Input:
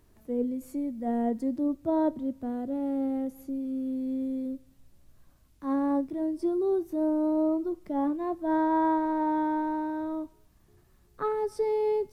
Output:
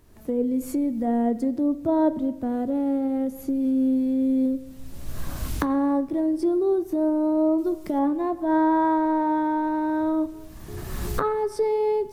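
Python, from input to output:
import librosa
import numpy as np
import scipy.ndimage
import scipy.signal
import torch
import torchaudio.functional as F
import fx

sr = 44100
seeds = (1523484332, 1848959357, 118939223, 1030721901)

y = fx.recorder_agc(x, sr, target_db=-23.0, rise_db_per_s=29.0, max_gain_db=30)
y = fx.high_shelf(y, sr, hz=3400.0, db=8.5, at=(7.58, 7.99))
y = fx.rev_spring(y, sr, rt60_s=1.1, pass_ms=(38, 43), chirp_ms=80, drr_db=15.0)
y = y * librosa.db_to_amplitude(4.5)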